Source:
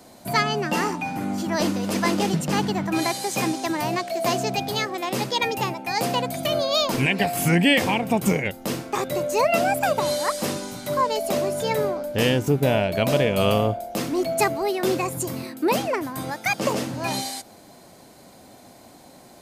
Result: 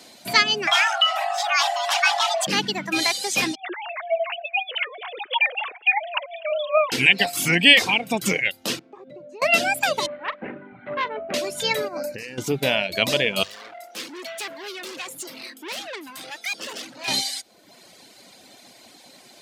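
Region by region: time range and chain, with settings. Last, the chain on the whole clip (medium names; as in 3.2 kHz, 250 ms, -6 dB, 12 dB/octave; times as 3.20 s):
0.67–2.47 s: treble shelf 6 kHz -7.5 dB + frequency shift +500 Hz + level flattener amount 70%
3.55–6.92 s: formants replaced by sine waves + feedback echo behind a high-pass 248 ms, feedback 32%, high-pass 1.6 kHz, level -17 dB
8.79–9.42 s: compression 5:1, threshold -32 dBFS + band-pass filter 240 Hz, Q 0.63
10.06–11.34 s: steep low-pass 2 kHz + valve stage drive 18 dB, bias 0.55 + doubling 41 ms -12 dB
11.88–12.38 s: compressor with a negative ratio -29 dBFS + Butterworth band-stop 3.3 kHz, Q 2.2
13.43–17.08 s: valve stage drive 32 dB, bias 0.35 + high-pass 270 Hz
whole clip: hum notches 50/100/150 Hz; reverb removal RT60 0.85 s; frequency weighting D; trim -1.5 dB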